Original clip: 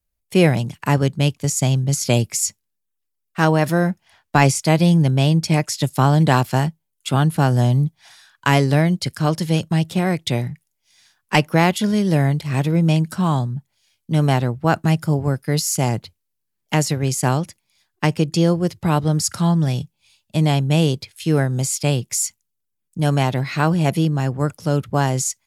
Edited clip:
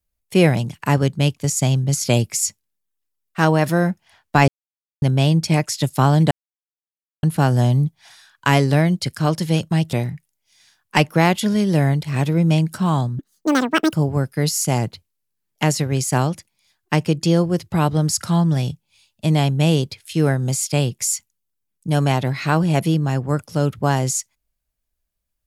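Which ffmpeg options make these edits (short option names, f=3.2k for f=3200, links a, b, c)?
-filter_complex "[0:a]asplit=8[a][b][c][d][e][f][g][h];[a]atrim=end=4.48,asetpts=PTS-STARTPTS,afade=t=out:st=4.476:d=0.004:c=hsin[i];[b]atrim=start=4.48:end=5.02,asetpts=PTS-STARTPTS,volume=0[j];[c]atrim=start=5.02:end=6.31,asetpts=PTS-STARTPTS,afade=t=in:d=0.004:c=hsin,afade=t=out:st=1.286:d=0.004:c=hsin[k];[d]atrim=start=6.31:end=7.23,asetpts=PTS-STARTPTS,volume=0[l];[e]atrim=start=7.23:end=9.932,asetpts=PTS-STARTPTS,afade=t=in:d=0.004:c=hsin[m];[f]atrim=start=10.308:end=13.574[n];[g]atrim=start=13.57:end=15.04,asetpts=PTS-STARTPTS,asetrate=87318,aresample=44100[o];[h]atrim=start=15.036[p];[i][j][k][l][m]concat=n=5:v=0:a=1[q];[q][n]acrossfade=d=0.004:c1=hsin:c2=hsin[r];[r][o]acrossfade=d=0.004:c1=hsin:c2=hsin[s];[s][p]acrossfade=d=0.004:c1=hsin:c2=hsin"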